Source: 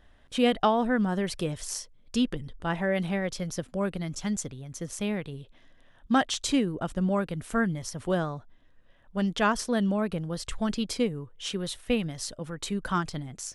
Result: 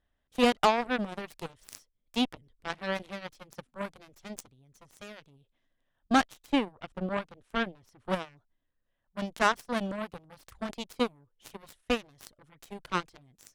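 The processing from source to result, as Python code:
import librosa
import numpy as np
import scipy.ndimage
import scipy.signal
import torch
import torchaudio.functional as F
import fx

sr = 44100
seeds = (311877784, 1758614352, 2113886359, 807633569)

y = fx.lowpass(x, sr, hz=3100.0, slope=6, at=(6.24, 8.05), fade=0.02)
y = fx.cheby_harmonics(y, sr, harmonics=(2, 6, 7), levels_db=(-17, -32, -16), full_scale_db=-10.5)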